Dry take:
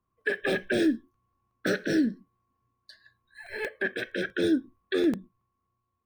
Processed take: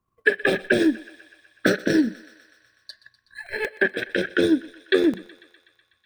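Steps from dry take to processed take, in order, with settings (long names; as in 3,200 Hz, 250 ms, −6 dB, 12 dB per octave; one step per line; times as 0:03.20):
transient designer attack +9 dB, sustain −4 dB
on a send: feedback echo with a high-pass in the loop 124 ms, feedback 73%, high-pass 490 Hz, level −19 dB
on the sum: level +2 dB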